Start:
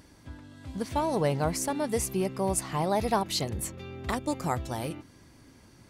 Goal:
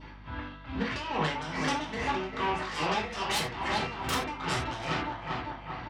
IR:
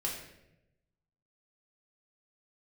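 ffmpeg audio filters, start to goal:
-filter_complex "[0:a]lowpass=f=3200:w=0.5412,lowpass=f=3200:w=1.3066,aecho=1:1:394|788|1182|1576|1970|2364|2758:0.251|0.148|0.0874|0.0516|0.0304|0.018|0.0106,adynamicequalizer=threshold=0.00398:dfrequency=1600:dqfactor=1.5:tfrequency=1600:tqfactor=1.5:attack=5:release=100:ratio=0.375:range=3:mode=boostabove:tftype=bell,acompressor=threshold=0.0282:ratio=12,lowshelf=f=700:t=q:w=1.5:g=-8.5,aeval=exprs='0.0841*sin(PI/2*6.31*val(0)/0.0841)':c=same,highpass=82[s0];[1:a]atrim=start_sample=2205,atrim=end_sample=4410[s1];[s0][s1]afir=irnorm=-1:irlink=0,tremolo=f=2.4:d=0.71,aeval=exprs='val(0)+0.00708*(sin(2*PI*50*n/s)+sin(2*PI*2*50*n/s)/2+sin(2*PI*3*50*n/s)/3+sin(2*PI*4*50*n/s)/4+sin(2*PI*5*50*n/s)/5)':c=same,volume=0.562"

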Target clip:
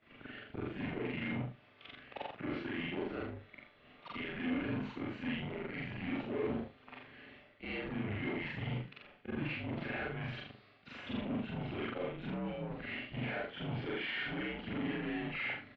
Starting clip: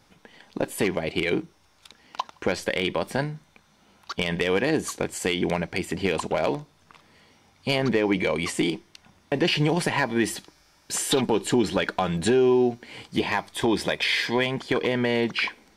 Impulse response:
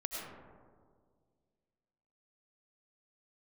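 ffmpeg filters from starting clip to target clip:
-filter_complex "[0:a]afftfilt=real='re':imag='-im':win_size=4096:overlap=0.75,agate=range=0.0224:threshold=0.001:ratio=3:detection=peak,equalizer=f=1100:t=o:w=0.45:g=-6.5,alimiter=limit=0.0891:level=0:latency=1:release=492,areverse,acompressor=threshold=0.00891:ratio=5,areverse,aeval=exprs='(tanh(178*val(0)+0.55)-tanh(0.55))/178':c=same,crystalizer=i=3:c=0,flanger=delay=1.7:depth=7.5:regen=-84:speed=1.2:shape=sinusoidal,asplit=2[s0][s1];[s1]adynamicsmooth=sensitivity=6.5:basefreq=580,volume=1.26[s2];[s0][s2]amix=inputs=2:normalize=0,aecho=1:1:40|77:0.631|0.299,highpass=f=370:t=q:w=0.5412,highpass=f=370:t=q:w=1.307,lowpass=f=3000:t=q:w=0.5176,lowpass=f=3000:t=q:w=0.7071,lowpass=f=3000:t=q:w=1.932,afreqshift=-200,volume=3.98"

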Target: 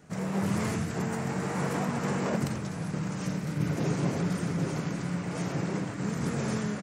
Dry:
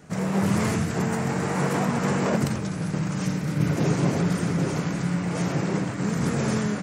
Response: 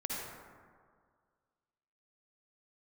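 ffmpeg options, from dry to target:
-af "aecho=1:1:1003|2006|3009:0.2|0.0698|0.0244,volume=0.501"

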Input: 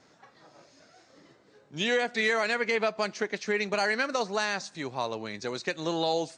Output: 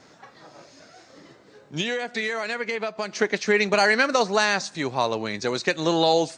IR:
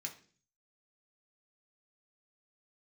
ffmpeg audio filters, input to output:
-filter_complex "[0:a]asettb=1/sr,asplit=3[s0][s1][s2];[s0]atrim=end=1.804[s3];[s1]atrim=start=1.8:end=3.13,asetpts=PTS-STARTPTS,afade=t=in:d=0.004:c=qsin,afade=t=out:st=1.326:d=0.004:c=qsin,acompressor=threshold=0.0224:ratio=6[s4];[s2]atrim=start=3.126[s5];[s3][s4]acrossfade=d=0.004:c1=hsin:c2=qsin[s6];[s6][s5]acrossfade=d=0.004:c1=qsin:c2=hsin,volume=2.51"

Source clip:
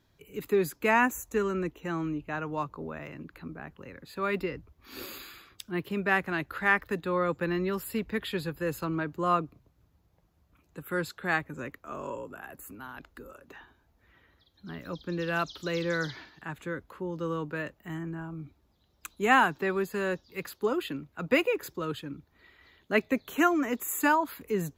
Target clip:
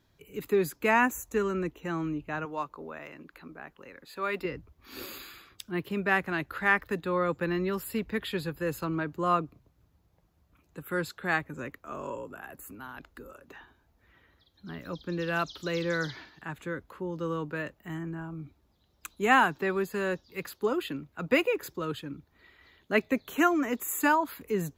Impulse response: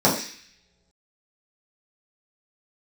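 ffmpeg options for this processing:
-filter_complex "[0:a]asettb=1/sr,asplit=3[s0][s1][s2];[s0]atrim=end=2.454[s3];[s1]atrim=start=2.45:end=4.45,asetpts=PTS-STARTPTS,afade=t=in:d=0.004:c=qsin,afade=t=out:st=1.996:d=0.004:c=qsin,equalizer=f=96:t=o:w=2.2:g=-15[s4];[s2]atrim=start=4.446[s5];[s3][s4]acrossfade=d=0.004:c1=hsin:c2=qsin[s6];[s6][s5]acrossfade=d=0.004:c1=qsin:c2=hsin"

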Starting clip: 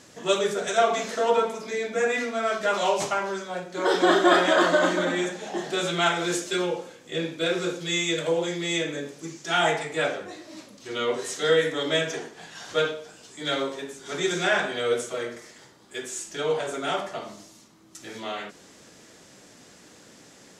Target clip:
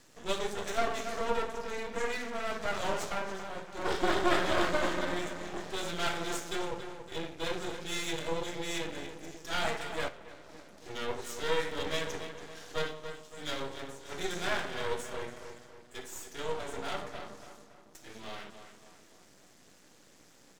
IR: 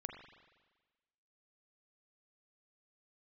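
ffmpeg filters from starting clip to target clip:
-filter_complex "[0:a]asplit=2[s0][s1];[s1]adelay=281,lowpass=f=3200:p=1,volume=0.355,asplit=2[s2][s3];[s3]adelay=281,lowpass=f=3200:p=1,volume=0.46,asplit=2[s4][s5];[s5]adelay=281,lowpass=f=3200:p=1,volume=0.46,asplit=2[s6][s7];[s7]adelay=281,lowpass=f=3200:p=1,volume=0.46,asplit=2[s8][s9];[s9]adelay=281,lowpass=f=3200:p=1,volume=0.46[s10];[s0][s2][s4][s6][s8][s10]amix=inputs=6:normalize=0,aeval=exprs='max(val(0),0)':c=same,asettb=1/sr,asplit=3[s11][s12][s13];[s11]atrim=end=10.084[s14];[s12]atrim=start=10.08:end=10.73,asetpts=PTS-STARTPTS,afade=t=in:d=0.004:c=qsin,afade=t=out:st=0.646:d=0.004:c=qsin,acompressor=threshold=0.0112:ratio=4[s15];[s13]atrim=start=10.726[s16];[s14][s15]acrossfade=d=0.004:c1=hsin:c2=qsin[s17];[s17][s16]acrossfade=d=0.004:c1=qsin:c2=hsin,volume=0.531"

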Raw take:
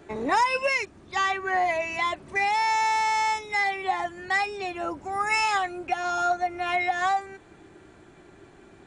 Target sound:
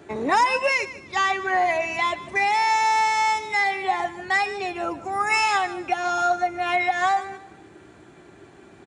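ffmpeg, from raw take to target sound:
-filter_complex "[0:a]highpass=73,asplit=2[s0][s1];[s1]aecho=0:1:150|300|450:0.168|0.0554|0.0183[s2];[s0][s2]amix=inputs=2:normalize=0,volume=1.41"

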